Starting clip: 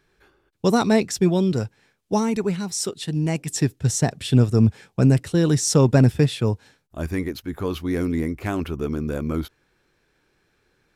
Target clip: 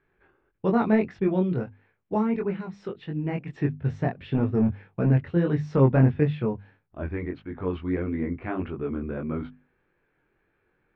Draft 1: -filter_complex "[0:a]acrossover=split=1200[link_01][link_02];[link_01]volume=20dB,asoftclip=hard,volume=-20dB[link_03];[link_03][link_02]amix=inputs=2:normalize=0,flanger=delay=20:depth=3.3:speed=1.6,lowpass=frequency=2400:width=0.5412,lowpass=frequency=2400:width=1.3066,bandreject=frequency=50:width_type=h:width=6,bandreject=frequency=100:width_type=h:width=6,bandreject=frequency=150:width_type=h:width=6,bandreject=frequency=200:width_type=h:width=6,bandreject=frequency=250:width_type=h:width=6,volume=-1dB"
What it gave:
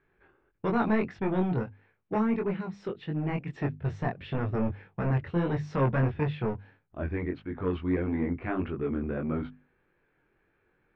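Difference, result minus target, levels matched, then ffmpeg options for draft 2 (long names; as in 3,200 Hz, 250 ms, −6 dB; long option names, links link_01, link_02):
gain into a clipping stage and back: distortion +17 dB
-filter_complex "[0:a]acrossover=split=1200[link_01][link_02];[link_01]volume=9.5dB,asoftclip=hard,volume=-9.5dB[link_03];[link_03][link_02]amix=inputs=2:normalize=0,flanger=delay=20:depth=3.3:speed=1.6,lowpass=frequency=2400:width=0.5412,lowpass=frequency=2400:width=1.3066,bandreject=frequency=50:width_type=h:width=6,bandreject=frequency=100:width_type=h:width=6,bandreject=frequency=150:width_type=h:width=6,bandreject=frequency=200:width_type=h:width=6,bandreject=frequency=250:width_type=h:width=6,volume=-1dB"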